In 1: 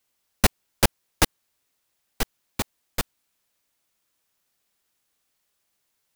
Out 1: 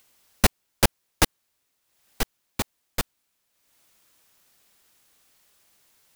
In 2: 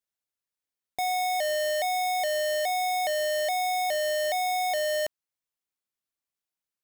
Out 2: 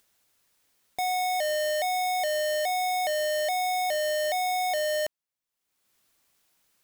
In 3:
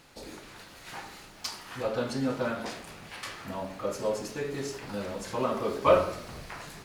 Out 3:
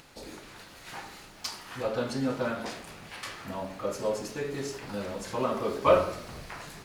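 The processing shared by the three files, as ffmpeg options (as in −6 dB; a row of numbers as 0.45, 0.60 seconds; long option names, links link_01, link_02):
-af "acompressor=mode=upward:threshold=-51dB:ratio=2.5"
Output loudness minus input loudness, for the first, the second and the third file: 0.0, 0.0, 0.0 LU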